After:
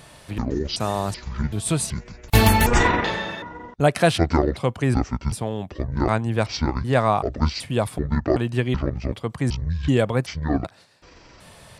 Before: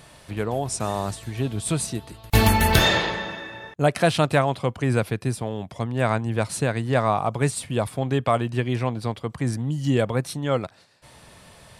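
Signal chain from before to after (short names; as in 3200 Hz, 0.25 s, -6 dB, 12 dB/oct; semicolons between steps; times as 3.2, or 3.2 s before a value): trilling pitch shifter -10.5 st, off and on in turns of 0.38 s; gain +2 dB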